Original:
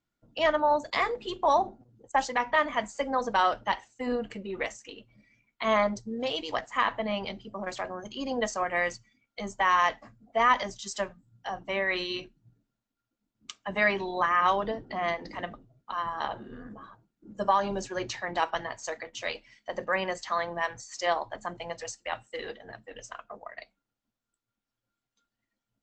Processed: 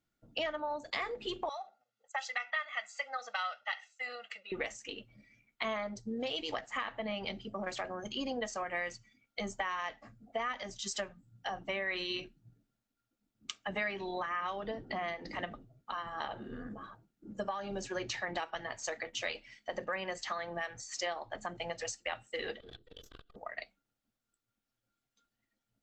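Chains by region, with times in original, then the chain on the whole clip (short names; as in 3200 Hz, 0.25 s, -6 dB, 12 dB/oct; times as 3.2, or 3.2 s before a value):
1.49–4.52 HPF 1500 Hz + air absorption 87 m + comb 1.5 ms, depth 88%
22.6–23.36 minimum comb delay 2.6 ms + EQ curve 500 Hz 0 dB, 760 Hz -18 dB, 1500 Hz -7 dB, 2300 Hz -16 dB, 3400 Hz +9 dB, 6000 Hz -10 dB + core saturation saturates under 420 Hz
whole clip: compressor 6:1, threshold -34 dBFS; notch 1000 Hz, Q 8.6; dynamic EQ 2600 Hz, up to +3 dB, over -54 dBFS, Q 1.1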